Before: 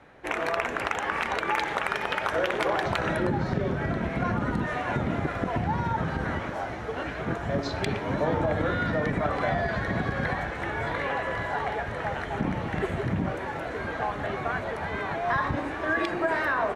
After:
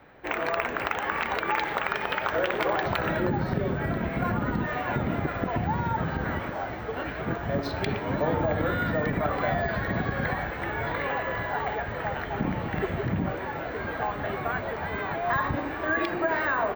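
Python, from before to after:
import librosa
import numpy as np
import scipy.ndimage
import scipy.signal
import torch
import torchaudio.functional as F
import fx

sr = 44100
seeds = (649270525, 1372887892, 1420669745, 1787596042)

y = scipy.signal.sosfilt(scipy.signal.butter(2, 5200.0, 'lowpass', fs=sr, output='sos'), x)
y = np.repeat(scipy.signal.resample_poly(y, 1, 2), 2)[:len(y)]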